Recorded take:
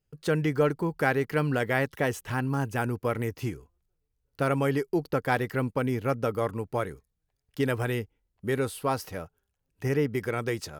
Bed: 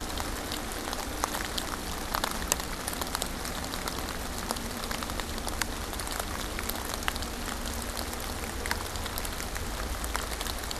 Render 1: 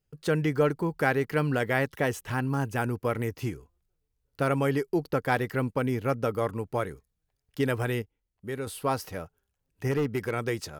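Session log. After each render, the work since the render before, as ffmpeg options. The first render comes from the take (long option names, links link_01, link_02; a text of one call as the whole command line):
ffmpeg -i in.wav -filter_complex "[0:a]asettb=1/sr,asplit=3[link_01][link_02][link_03];[link_01]atrim=end=9.914[link_04];[link_02]atrim=start=9.91:end=10.31,asetpts=PTS-STARTPTS,afade=type=in:duration=0.004:curve=qsin,afade=type=out:start_time=0.396:duration=0.004:curve=qsin,volume=22dB,asoftclip=hard,volume=-22dB[link_05];[link_03]atrim=start=10.306[link_06];[link_04][link_05]acrossfade=duration=0.004:curve1=hsin:curve2=qsin[link_07];[link_07][link_06]acrossfade=duration=0.004:curve1=qsin:curve2=hsin,asplit=3[link_08][link_09][link_10];[link_08]atrim=end=8.022[link_11];[link_09]atrim=start=8.018:end=8.672,asetpts=PTS-STARTPTS,volume=-6.5dB[link_12];[link_10]atrim=start=8.668[link_13];[link_11][link_12]acrossfade=duration=0.004:curve1=hsin:curve2=hsin[link_14];[link_14][link_13]acrossfade=duration=0.004:curve1=hsin:curve2=hsin" out.wav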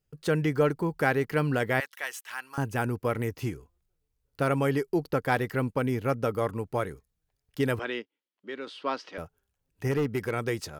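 ffmpeg -i in.wav -filter_complex "[0:a]asettb=1/sr,asplit=3[link_01][link_02][link_03];[link_01]atrim=end=1.804[link_04];[link_02]atrim=start=1.8:end=2.58,asetpts=PTS-STARTPTS,afade=type=in:duration=0.004:curve=qsin,afade=type=out:start_time=0.776:duration=0.004:curve=qsin,highpass=1400[link_05];[link_03]atrim=start=2.576[link_06];[link_04][link_05]acrossfade=duration=0.004:curve1=hsin:curve2=qsin[link_07];[link_07][link_06]acrossfade=duration=0.004:curve1=qsin:curve2=hsin,asettb=1/sr,asplit=3[link_08][link_09][link_10];[link_08]atrim=end=7.794[link_11];[link_09]atrim=start=7.79:end=9.18,asetpts=PTS-STARTPTS,afade=type=in:duration=0.004:curve=qsin,afade=type=out:start_time=1.386:duration=0.004:curve=qsin,highpass=frequency=270:width=0.5412,highpass=frequency=270:width=1.3066,equalizer=frequency=440:width_type=q:width=4:gain=-6,equalizer=frequency=770:width_type=q:width=4:gain=-7,equalizer=frequency=3200:width_type=q:width=4:gain=5,lowpass=frequency=4900:width=0.5412,lowpass=frequency=4900:width=1.3066[link_12];[link_10]atrim=start=9.176[link_13];[link_11][link_12]acrossfade=duration=0.004:curve1=hsin:curve2=qsin[link_14];[link_14][link_13]acrossfade=duration=0.004:curve1=qsin:curve2=hsin" out.wav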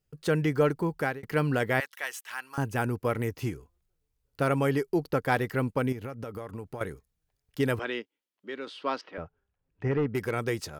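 ffmpeg -i in.wav -filter_complex "[0:a]asettb=1/sr,asplit=3[link_01][link_02][link_03];[link_01]atrim=end=5.924[link_04];[link_02]atrim=start=5.92:end=6.81,asetpts=PTS-STARTPTS,afade=type=in:duration=0.004:curve=qsin,afade=type=out:start_time=0.886:duration=0.004:curve=qsin,acompressor=threshold=-33dB:ratio=16:attack=3.2:release=140:knee=1:detection=peak[link_05];[link_03]atrim=start=6.806[link_06];[link_04][link_05]acrossfade=duration=0.004:curve1=hsin:curve2=qsin[link_07];[link_07][link_06]acrossfade=duration=0.004:curve1=qsin:curve2=hsin,asettb=1/sr,asplit=3[link_08][link_09][link_10];[link_08]atrim=end=9.014[link_11];[link_09]atrim=start=9.01:end=10.15,asetpts=PTS-STARTPTS,afade=type=in:duration=0.004:curve=qsin,afade=type=out:start_time=1.136:duration=0.004:curve=qsin,lowpass=2300[link_12];[link_10]atrim=start=10.146[link_13];[link_11][link_12]acrossfade=duration=0.004:curve1=hsin:curve2=qsin[link_14];[link_14][link_13]acrossfade=duration=0.004:curve1=qsin:curve2=hsin,asplit=2[link_15][link_16];[link_15]atrim=end=1.23,asetpts=PTS-STARTPTS,afade=type=out:start_time=0.83:duration=0.4:curve=qsin[link_17];[link_16]atrim=start=1.23,asetpts=PTS-STARTPTS,afade=type=in:duration=0.004:curve=hsin[link_18];[link_17][link_18]concat=n=2:v=0:a=1" out.wav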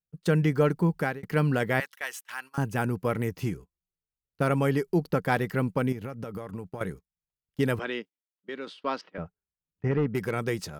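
ffmpeg -i in.wav -af "agate=range=-20dB:threshold=-43dB:ratio=16:detection=peak,equalizer=frequency=180:width_type=o:width=0.4:gain=10.5" out.wav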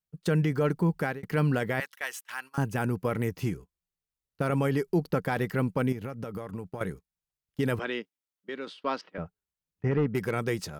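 ffmpeg -i in.wav -af "alimiter=limit=-17dB:level=0:latency=1:release=26" out.wav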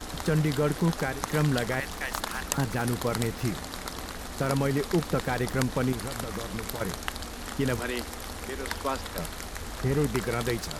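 ffmpeg -i in.wav -i bed.wav -filter_complex "[1:a]volume=-3dB[link_01];[0:a][link_01]amix=inputs=2:normalize=0" out.wav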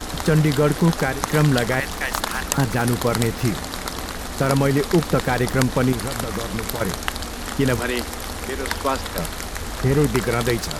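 ffmpeg -i in.wav -af "volume=8dB,alimiter=limit=-1dB:level=0:latency=1" out.wav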